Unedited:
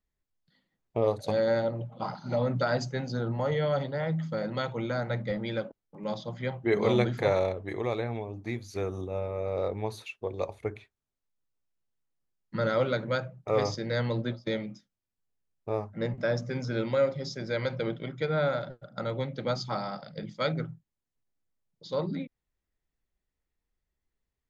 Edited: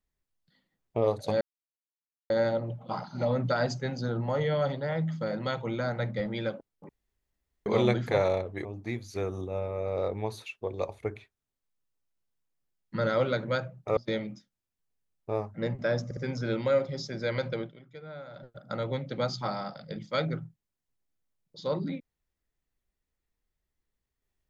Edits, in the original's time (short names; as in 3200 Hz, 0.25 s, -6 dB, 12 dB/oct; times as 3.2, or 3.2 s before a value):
1.41 insert silence 0.89 s
6–6.77 room tone
7.76–8.25 cut
13.57–14.36 cut
16.44 stutter 0.06 s, 3 plays
17.77–18.84 dip -16 dB, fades 0.27 s